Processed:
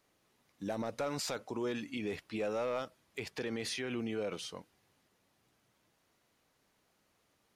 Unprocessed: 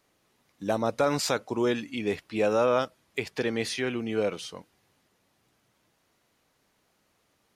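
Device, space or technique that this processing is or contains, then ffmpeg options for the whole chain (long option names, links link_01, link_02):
clipper into limiter: -af "asoftclip=type=hard:threshold=-17.5dB,alimiter=level_in=0.5dB:limit=-24dB:level=0:latency=1:release=35,volume=-0.5dB,volume=-4dB"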